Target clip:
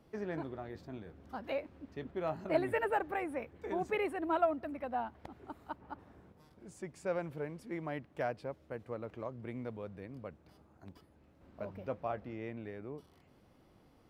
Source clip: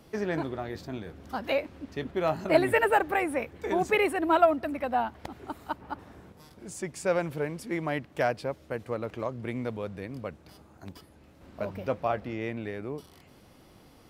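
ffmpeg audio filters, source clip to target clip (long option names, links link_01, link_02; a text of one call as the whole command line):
ffmpeg -i in.wav -af "highshelf=frequency=2800:gain=-9,volume=-8.5dB" out.wav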